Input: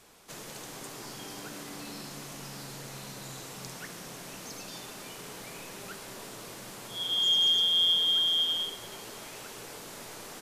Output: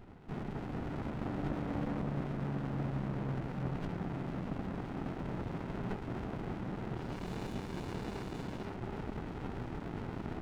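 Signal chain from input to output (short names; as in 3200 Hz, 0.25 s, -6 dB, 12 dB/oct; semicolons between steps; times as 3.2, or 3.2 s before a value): Gaussian blur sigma 5.7 samples; running maximum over 65 samples; gain +11.5 dB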